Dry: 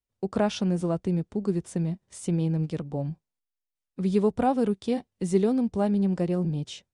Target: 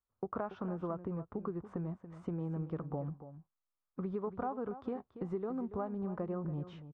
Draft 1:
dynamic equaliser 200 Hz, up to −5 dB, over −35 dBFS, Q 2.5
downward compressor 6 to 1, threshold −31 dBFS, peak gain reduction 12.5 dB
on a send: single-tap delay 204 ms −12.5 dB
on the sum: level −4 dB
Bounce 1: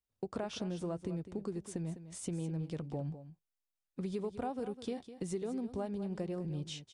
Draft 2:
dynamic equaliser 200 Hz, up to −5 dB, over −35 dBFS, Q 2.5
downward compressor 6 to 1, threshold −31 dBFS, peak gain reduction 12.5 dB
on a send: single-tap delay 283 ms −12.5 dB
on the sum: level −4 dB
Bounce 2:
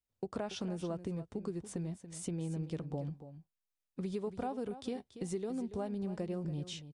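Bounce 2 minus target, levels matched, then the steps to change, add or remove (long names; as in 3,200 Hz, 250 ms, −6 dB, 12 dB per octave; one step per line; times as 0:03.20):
1,000 Hz band −3.5 dB
add after dynamic equaliser: low-pass with resonance 1,200 Hz, resonance Q 3.7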